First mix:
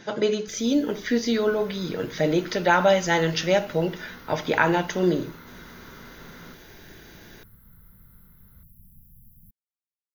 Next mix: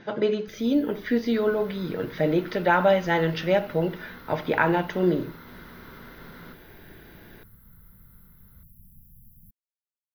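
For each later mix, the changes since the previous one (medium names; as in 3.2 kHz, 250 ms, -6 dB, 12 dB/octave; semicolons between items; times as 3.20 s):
speech: add distance through air 260 m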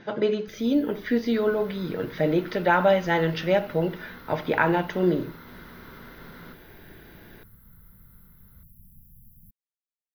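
no change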